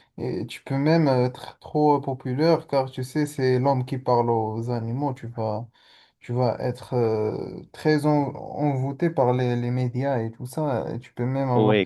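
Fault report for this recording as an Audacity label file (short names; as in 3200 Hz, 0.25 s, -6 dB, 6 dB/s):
5.160000	5.160000	gap 4 ms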